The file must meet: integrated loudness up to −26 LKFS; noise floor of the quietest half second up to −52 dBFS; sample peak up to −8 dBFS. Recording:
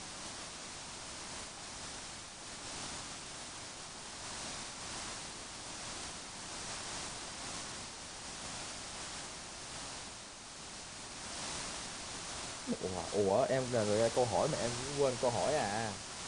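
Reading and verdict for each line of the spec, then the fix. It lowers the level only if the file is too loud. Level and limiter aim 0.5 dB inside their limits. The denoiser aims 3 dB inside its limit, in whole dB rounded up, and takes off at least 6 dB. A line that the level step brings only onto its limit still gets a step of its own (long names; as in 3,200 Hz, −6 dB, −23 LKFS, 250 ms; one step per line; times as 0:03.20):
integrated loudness −39.0 LKFS: in spec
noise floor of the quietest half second −49 dBFS: out of spec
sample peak −17.5 dBFS: in spec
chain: broadband denoise 6 dB, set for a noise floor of −49 dBFS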